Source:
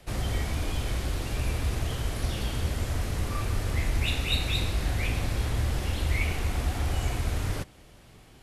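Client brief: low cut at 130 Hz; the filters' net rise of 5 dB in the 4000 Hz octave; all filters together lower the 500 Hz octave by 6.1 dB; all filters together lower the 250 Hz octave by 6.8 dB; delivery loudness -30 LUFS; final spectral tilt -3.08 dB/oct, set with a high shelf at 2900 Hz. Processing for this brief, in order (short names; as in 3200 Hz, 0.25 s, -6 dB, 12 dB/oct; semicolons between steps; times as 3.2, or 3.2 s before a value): HPF 130 Hz; bell 250 Hz -7 dB; bell 500 Hz -6 dB; high shelf 2900 Hz +3.5 dB; bell 4000 Hz +3.5 dB; gain +1.5 dB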